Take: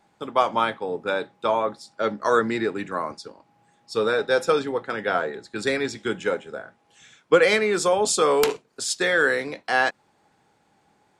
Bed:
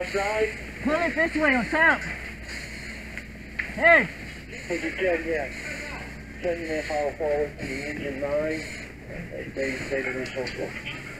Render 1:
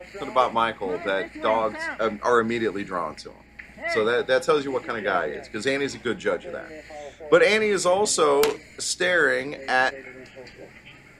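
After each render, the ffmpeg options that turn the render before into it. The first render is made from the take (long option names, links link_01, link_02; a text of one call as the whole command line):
ffmpeg -i in.wav -i bed.wav -filter_complex "[1:a]volume=-12dB[link_01];[0:a][link_01]amix=inputs=2:normalize=0" out.wav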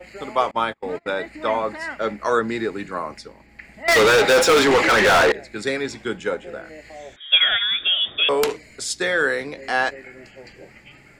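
ffmpeg -i in.wav -filter_complex "[0:a]asettb=1/sr,asplit=3[link_01][link_02][link_03];[link_01]atrim=end=0.514[link_04];[link_02]atrim=start=0.51:end=1.1,asetpts=PTS-STARTPTS,afade=type=in:duration=0.004:curve=qsin,afade=type=out:start_time=0.586:duration=0.004:curve=qsin,agate=range=-28dB:threshold=-31dB:ratio=16:release=100:detection=peak[link_05];[link_03]atrim=start=1.096[link_06];[link_04][link_05]acrossfade=duration=0.004:curve1=hsin:curve2=qsin[link_07];[link_07][link_06]acrossfade=duration=0.004:curve1=qsin:curve2=hsin,asettb=1/sr,asplit=3[link_08][link_09][link_10];[link_08]atrim=end=3.884[link_11];[link_09]atrim=start=3.88:end=5.32,asetpts=PTS-STARTPTS,afade=type=in:duration=0.004:curve=qsin,afade=type=out:start_time=1.436:duration=0.004:curve=qsin,asplit=2[link_12][link_13];[link_13]highpass=frequency=720:poles=1,volume=34dB,asoftclip=type=tanh:threshold=-8dB[link_14];[link_12][link_14]amix=inputs=2:normalize=0,lowpass=frequency=5200:poles=1,volume=-6dB[link_15];[link_10]atrim=start=5.316[link_16];[link_11][link_15]acrossfade=duration=0.004:curve1=hsin:curve2=qsin[link_17];[link_17][link_16]acrossfade=duration=0.004:curve1=qsin:curve2=hsin,asettb=1/sr,asplit=3[link_18][link_19][link_20];[link_18]atrim=end=7.164[link_21];[link_19]atrim=start=7.16:end=8.29,asetpts=PTS-STARTPTS,afade=type=in:duration=0.004:curve=qsin,afade=type=out:start_time=1.126:duration=0.004:curve=qsin,lowpass=frequency=3200:width_type=q:width=0.5098,lowpass=frequency=3200:width_type=q:width=0.6013,lowpass=frequency=3200:width_type=q:width=0.9,lowpass=frequency=3200:width_type=q:width=2.563,afreqshift=-3800[link_22];[link_20]atrim=start=8.286[link_23];[link_21][link_22]acrossfade=duration=0.004:curve1=hsin:curve2=qsin[link_24];[link_24][link_23]acrossfade=duration=0.004:curve1=qsin:curve2=hsin" out.wav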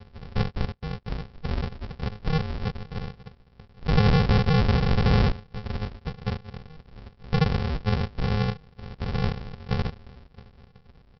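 ffmpeg -i in.wav -af "flanger=delay=1.4:depth=4.2:regen=82:speed=0.34:shape=triangular,aresample=11025,acrusher=samples=35:mix=1:aa=0.000001,aresample=44100" out.wav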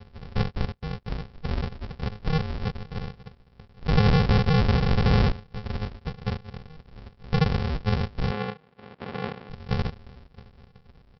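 ffmpeg -i in.wav -filter_complex "[0:a]asettb=1/sr,asplit=3[link_01][link_02][link_03];[link_01]atrim=end=8.314[link_04];[link_02]atrim=start=8.31:end=9.5,asetpts=PTS-STARTPTS,afade=type=in:duration=0.004:curve=qsin,afade=type=out:start_time=1.186:duration=0.004:curve=qsin,highpass=230,lowpass=3100[link_05];[link_03]atrim=start=9.496[link_06];[link_04][link_05]acrossfade=duration=0.004:curve1=hsin:curve2=qsin[link_07];[link_07][link_06]acrossfade=duration=0.004:curve1=qsin:curve2=hsin" out.wav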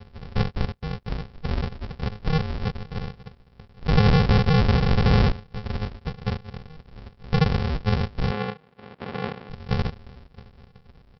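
ffmpeg -i in.wav -af "volume=2dB" out.wav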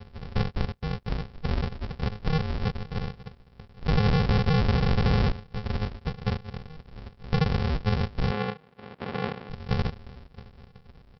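ffmpeg -i in.wav -af "acompressor=threshold=-21dB:ratio=3" out.wav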